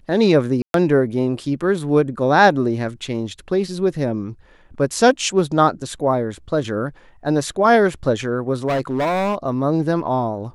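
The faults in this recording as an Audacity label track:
0.620000	0.740000	gap 0.122 s
8.670000	9.350000	clipped -17 dBFS

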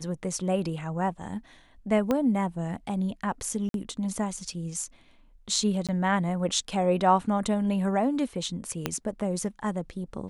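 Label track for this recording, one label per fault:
2.110000	2.110000	pop -13 dBFS
3.690000	3.740000	gap 52 ms
5.870000	5.890000	gap 17 ms
8.860000	8.860000	pop -11 dBFS

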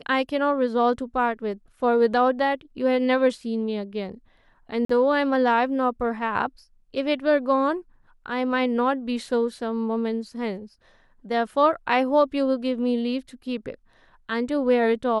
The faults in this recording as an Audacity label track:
4.850000	4.890000	gap 44 ms

